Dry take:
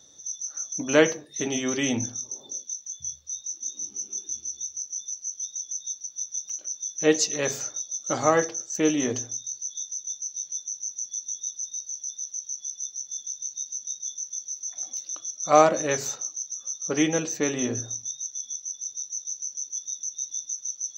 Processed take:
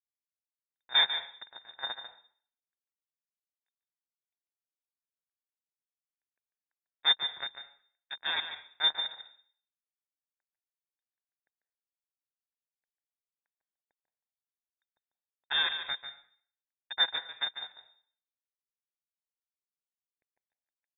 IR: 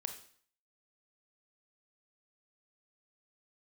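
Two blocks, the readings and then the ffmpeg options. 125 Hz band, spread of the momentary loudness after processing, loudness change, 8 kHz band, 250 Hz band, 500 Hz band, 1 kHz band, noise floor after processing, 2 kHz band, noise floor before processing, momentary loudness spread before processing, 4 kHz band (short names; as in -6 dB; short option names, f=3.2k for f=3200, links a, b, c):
under -30 dB, 20 LU, -2.0 dB, under -40 dB, under -35 dB, -28.0 dB, -14.5 dB, under -85 dBFS, -4.0 dB, -50 dBFS, 10 LU, +6.5 dB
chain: -filter_complex "[0:a]acrusher=bits=2:mix=0:aa=0.5,asplit=3[a][b][c];[a]bandpass=f=270:t=q:w=8,volume=0dB[d];[b]bandpass=f=2.29k:t=q:w=8,volume=-6dB[e];[c]bandpass=f=3.01k:t=q:w=8,volume=-9dB[f];[d][e][f]amix=inputs=3:normalize=0,asplit=2[g][h];[1:a]atrim=start_sample=2205,adelay=145[i];[h][i]afir=irnorm=-1:irlink=0,volume=-7.5dB[j];[g][j]amix=inputs=2:normalize=0,lowpass=f=3.3k:t=q:w=0.5098,lowpass=f=3.3k:t=q:w=0.6013,lowpass=f=3.3k:t=q:w=0.9,lowpass=f=3.3k:t=q:w=2.563,afreqshift=-3900,volume=6.5dB"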